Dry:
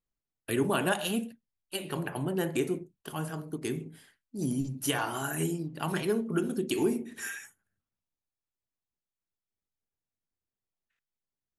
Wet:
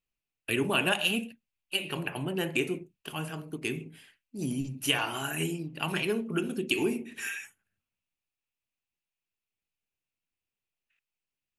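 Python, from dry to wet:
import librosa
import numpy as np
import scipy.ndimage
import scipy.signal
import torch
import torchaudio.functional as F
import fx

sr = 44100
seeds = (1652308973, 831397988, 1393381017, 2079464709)

y = fx.peak_eq(x, sr, hz=2600.0, db=14.0, octaves=0.53)
y = y * librosa.db_to_amplitude(-1.5)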